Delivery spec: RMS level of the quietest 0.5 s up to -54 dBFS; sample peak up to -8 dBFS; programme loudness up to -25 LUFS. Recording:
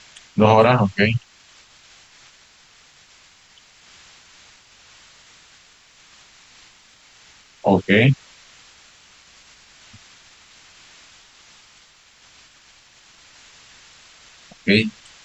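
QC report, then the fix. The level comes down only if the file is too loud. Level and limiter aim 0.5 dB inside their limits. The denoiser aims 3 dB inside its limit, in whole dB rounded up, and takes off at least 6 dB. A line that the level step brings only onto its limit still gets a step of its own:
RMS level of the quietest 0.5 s -52 dBFS: fail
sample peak -3.0 dBFS: fail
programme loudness -18.0 LUFS: fail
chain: trim -7.5 dB

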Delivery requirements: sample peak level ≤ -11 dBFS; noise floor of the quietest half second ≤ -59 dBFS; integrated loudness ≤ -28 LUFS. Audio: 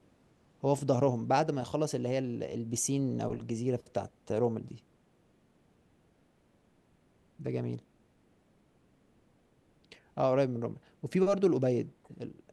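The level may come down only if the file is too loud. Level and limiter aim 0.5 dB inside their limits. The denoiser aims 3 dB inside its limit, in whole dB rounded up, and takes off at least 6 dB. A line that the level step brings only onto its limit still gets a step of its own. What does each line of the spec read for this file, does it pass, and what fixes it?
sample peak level -14.0 dBFS: pass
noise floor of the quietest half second -68 dBFS: pass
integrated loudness -32.0 LUFS: pass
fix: none needed

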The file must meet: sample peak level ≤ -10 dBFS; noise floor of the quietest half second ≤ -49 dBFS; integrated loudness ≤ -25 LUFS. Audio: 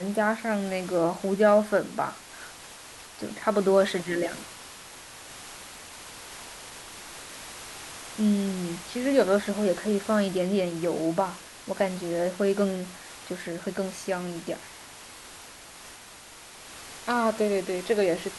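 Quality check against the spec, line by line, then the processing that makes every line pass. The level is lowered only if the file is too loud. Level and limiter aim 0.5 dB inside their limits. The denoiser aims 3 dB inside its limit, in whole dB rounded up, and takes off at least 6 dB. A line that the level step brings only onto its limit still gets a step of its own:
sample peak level -9.0 dBFS: fail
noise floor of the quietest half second -47 dBFS: fail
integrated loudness -27.0 LUFS: pass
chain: noise reduction 6 dB, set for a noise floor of -47 dBFS; peak limiter -10.5 dBFS

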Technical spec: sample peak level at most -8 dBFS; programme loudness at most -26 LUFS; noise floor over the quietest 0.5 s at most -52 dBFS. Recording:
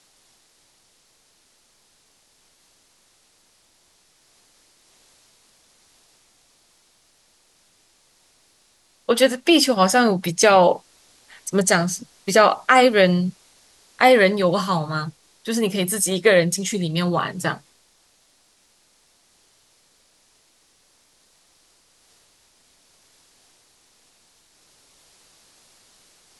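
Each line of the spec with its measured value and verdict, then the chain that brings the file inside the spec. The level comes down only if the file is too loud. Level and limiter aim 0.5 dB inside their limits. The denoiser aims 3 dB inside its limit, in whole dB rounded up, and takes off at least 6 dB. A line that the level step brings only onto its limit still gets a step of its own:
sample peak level -3.0 dBFS: fail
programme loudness -18.5 LUFS: fail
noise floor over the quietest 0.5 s -60 dBFS: pass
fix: trim -8 dB

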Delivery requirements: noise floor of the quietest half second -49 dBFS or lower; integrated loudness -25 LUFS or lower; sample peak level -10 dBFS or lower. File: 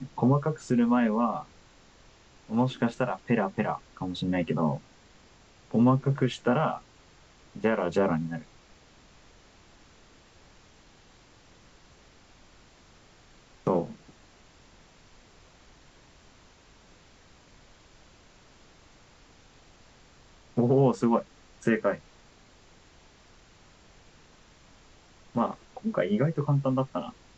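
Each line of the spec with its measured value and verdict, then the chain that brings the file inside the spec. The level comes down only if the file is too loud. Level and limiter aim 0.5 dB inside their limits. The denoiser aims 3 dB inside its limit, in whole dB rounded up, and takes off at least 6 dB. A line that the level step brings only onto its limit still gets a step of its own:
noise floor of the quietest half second -57 dBFS: pass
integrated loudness -28.0 LUFS: pass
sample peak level -11.0 dBFS: pass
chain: none needed

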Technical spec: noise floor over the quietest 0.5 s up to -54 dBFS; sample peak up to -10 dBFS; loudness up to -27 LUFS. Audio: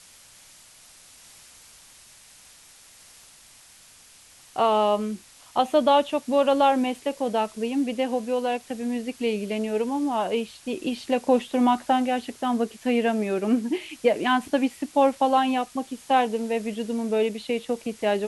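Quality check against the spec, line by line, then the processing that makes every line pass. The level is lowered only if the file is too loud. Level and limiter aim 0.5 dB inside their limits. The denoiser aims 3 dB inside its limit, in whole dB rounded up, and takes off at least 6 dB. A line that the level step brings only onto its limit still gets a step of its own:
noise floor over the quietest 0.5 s -52 dBFS: fail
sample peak -8.0 dBFS: fail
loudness -24.5 LUFS: fail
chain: trim -3 dB

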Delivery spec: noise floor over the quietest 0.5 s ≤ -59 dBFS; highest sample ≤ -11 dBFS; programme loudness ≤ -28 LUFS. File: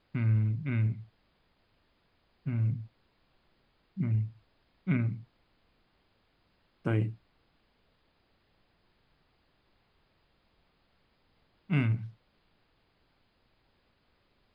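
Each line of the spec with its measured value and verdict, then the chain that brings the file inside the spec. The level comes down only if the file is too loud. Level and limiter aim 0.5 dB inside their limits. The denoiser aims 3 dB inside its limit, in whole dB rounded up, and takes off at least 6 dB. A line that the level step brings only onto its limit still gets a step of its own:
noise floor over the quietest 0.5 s -71 dBFS: pass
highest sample -16.5 dBFS: pass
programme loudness -32.0 LUFS: pass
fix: none needed

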